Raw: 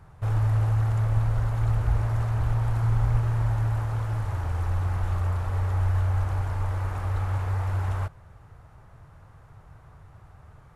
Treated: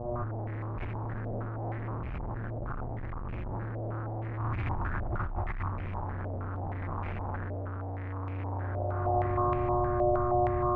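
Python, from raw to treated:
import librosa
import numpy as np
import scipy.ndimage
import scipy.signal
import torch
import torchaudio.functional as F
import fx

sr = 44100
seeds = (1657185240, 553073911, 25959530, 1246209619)

y = fx.low_shelf(x, sr, hz=160.0, db=9.0)
y = fx.dmg_buzz(y, sr, base_hz=120.0, harmonics=10, level_db=-39.0, tilt_db=-5, odd_only=False)
y = fx.spec_box(y, sr, start_s=5.95, length_s=2.81, low_hz=400.0, high_hz=900.0, gain_db=6)
y = fx.rev_schroeder(y, sr, rt60_s=3.1, comb_ms=28, drr_db=-9.5)
y = np.clip(y, -10.0 ** (-19.5 / 20.0), 10.0 ** (-19.5 / 20.0))
y = fx.graphic_eq_10(y, sr, hz=(125, 250, 500), db=(-4, -4, -12), at=(4.38, 5.72))
y = y + 10.0 ** (-17.0 / 20.0) * np.pad(y, (int(1008 * sr / 1000.0), 0))[:len(y)]
y = fx.over_compress(y, sr, threshold_db=-27.0, ratio=-1.0)
y = fx.filter_held_lowpass(y, sr, hz=6.4, low_hz=640.0, high_hz=2400.0)
y = F.gain(torch.from_numpy(y), -7.0).numpy()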